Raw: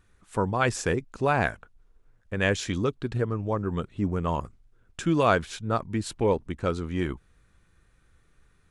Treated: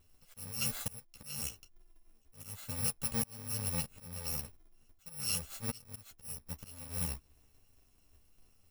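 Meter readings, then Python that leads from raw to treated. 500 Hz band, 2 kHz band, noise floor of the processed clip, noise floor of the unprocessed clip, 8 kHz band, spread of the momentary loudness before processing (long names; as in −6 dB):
−25.0 dB, −19.0 dB, −67 dBFS, −64 dBFS, +3.0 dB, 9 LU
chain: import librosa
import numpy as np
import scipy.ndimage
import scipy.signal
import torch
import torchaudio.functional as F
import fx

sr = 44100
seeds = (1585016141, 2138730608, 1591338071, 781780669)

y = fx.bit_reversed(x, sr, seeds[0], block=128)
y = fx.auto_swell(y, sr, attack_ms=625.0)
y = fx.chorus_voices(y, sr, voices=2, hz=1.1, base_ms=11, depth_ms=3.0, mix_pct=40)
y = y * 10.0 ** (-1.5 / 20.0)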